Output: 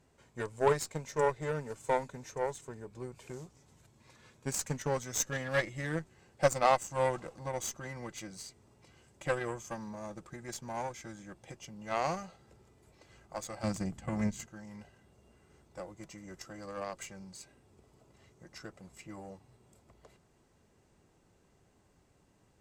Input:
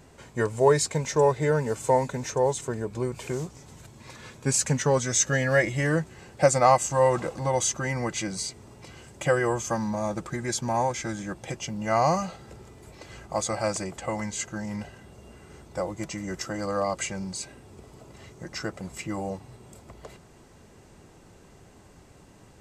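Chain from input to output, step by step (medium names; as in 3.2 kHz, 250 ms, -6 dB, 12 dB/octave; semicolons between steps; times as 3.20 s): 13.63–14.46 s: resonant low shelf 300 Hz +11 dB, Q 1.5; Chebyshev shaper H 3 -32 dB, 4 -23 dB, 7 -22 dB, 8 -36 dB, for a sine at -5.5 dBFS; trim -6.5 dB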